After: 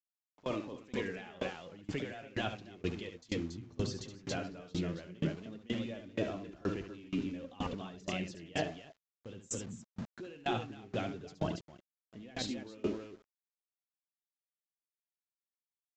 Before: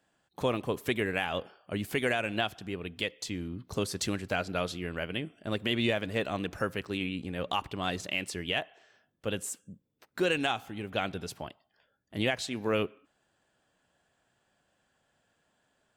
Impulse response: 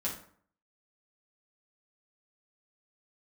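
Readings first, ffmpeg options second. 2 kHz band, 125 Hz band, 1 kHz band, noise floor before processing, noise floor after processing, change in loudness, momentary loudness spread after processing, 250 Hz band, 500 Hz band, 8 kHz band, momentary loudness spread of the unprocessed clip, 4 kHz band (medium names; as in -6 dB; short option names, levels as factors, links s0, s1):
-11.5 dB, -3.5 dB, -8.0 dB, -75 dBFS, under -85 dBFS, -7.0 dB, 8 LU, -4.0 dB, -7.0 dB, -6.5 dB, 9 LU, -10.0 dB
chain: -filter_complex "[0:a]afftfilt=real='re*gte(hypot(re,im),0.00447)':imag='im*gte(hypot(re,im),0.00447)':win_size=1024:overlap=0.75,equalizer=f=270:t=o:w=2:g=2.5,acrossover=split=510|2100[s0][s1][s2];[s0]dynaudnorm=f=580:g=9:m=2.37[s3];[s3][s1][s2]amix=inputs=3:normalize=0,alimiter=limit=0.0841:level=0:latency=1:release=11,areverse,acompressor=threshold=0.00708:ratio=5,areverse,aecho=1:1:69.97|279.9:0.562|0.562,flanger=delay=2.9:depth=5.8:regen=46:speed=0.15:shape=sinusoidal,aeval=exprs='val(0)+0.000126*(sin(2*PI*50*n/s)+sin(2*PI*2*50*n/s)/2+sin(2*PI*3*50*n/s)/3+sin(2*PI*4*50*n/s)/4+sin(2*PI*5*50*n/s)/5)':c=same,aeval=exprs='val(0)*gte(abs(val(0)),0.00133)':c=same,aresample=16000,aresample=44100,aeval=exprs='val(0)*pow(10,-26*if(lt(mod(2.1*n/s,1),2*abs(2.1)/1000),1-mod(2.1*n/s,1)/(2*abs(2.1)/1000),(mod(2.1*n/s,1)-2*abs(2.1)/1000)/(1-2*abs(2.1)/1000))/20)':c=same,volume=6.31"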